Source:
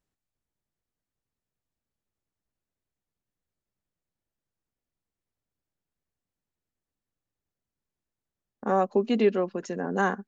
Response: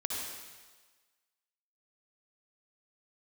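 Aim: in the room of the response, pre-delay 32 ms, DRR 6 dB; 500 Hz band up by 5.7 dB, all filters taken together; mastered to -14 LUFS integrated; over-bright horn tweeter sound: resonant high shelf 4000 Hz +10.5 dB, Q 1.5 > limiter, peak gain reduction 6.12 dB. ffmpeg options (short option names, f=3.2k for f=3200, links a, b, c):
-filter_complex "[0:a]equalizer=f=500:t=o:g=7.5,asplit=2[a][b];[1:a]atrim=start_sample=2205,adelay=32[c];[b][c]afir=irnorm=-1:irlink=0,volume=-10dB[d];[a][d]amix=inputs=2:normalize=0,highshelf=f=4k:t=q:w=1.5:g=10.5,volume=9.5dB,alimiter=limit=-3dB:level=0:latency=1"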